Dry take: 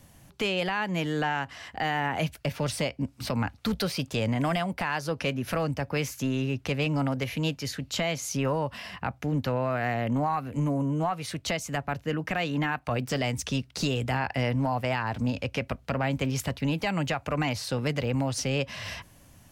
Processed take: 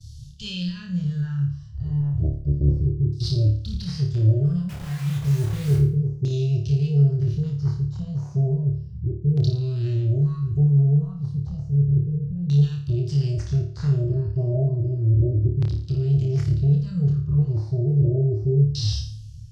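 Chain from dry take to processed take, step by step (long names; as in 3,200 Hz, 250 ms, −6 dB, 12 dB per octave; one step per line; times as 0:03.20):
0:01.53–0:03.00: sub-octave generator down 1 octave, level −6 dB
elliptic band-stop filter 120–5,100 Hz, stop band 40 dB
downward expander −55 dBFS
harmonic and percussive parts rebalanced percussive −12 dB
in parallel at +3 dB: brickwall limiter −33 dBFS, peak gain reduction 7.5 dB
on the sum: harmonic generator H 5 −18 dB, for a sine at −21 dBFS
auto-filter low-pass saw down 0.32 Hz 330–4,100 Hz
0:04.69–0:05.78: bit-depth reduction 8 bits, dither none
on a send: flutter between parallel walls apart 4.8 metres, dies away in 0.47 s
on the sum: level +7.5 dB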